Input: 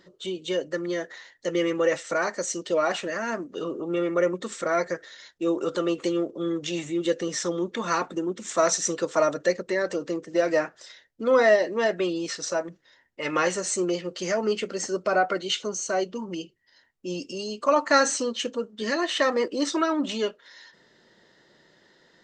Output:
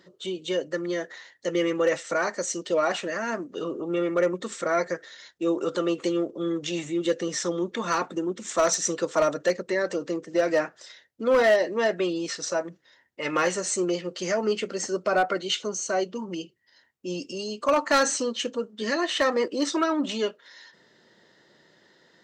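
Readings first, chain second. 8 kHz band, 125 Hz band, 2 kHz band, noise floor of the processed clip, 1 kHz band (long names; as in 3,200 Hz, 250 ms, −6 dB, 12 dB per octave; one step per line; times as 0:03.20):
0.0 dB, 0.0 dB, −0.5 dB, −61 dBFS, −0.5 dB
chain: high-pass filter 76 Hz
hard clipping −15 dBFS, distortion −20 dB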